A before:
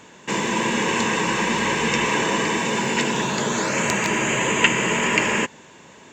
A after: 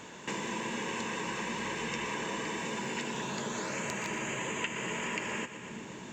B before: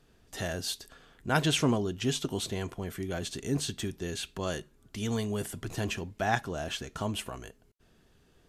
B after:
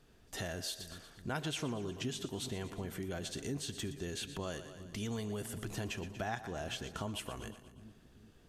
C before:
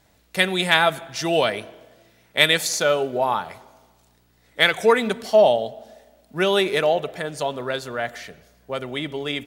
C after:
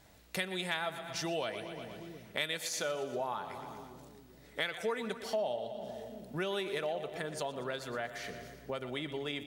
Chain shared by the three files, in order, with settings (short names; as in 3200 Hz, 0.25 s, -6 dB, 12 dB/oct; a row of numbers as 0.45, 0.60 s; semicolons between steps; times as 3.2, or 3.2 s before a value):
on a send: split-band echo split 330 Hz, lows 0.384 s, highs 0.119 s, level -14 dB; on the sum: compressor 3:1, threshold -37 dBFS; gain -1 dB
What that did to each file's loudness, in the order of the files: -14.5, -8.0, -16.5 LU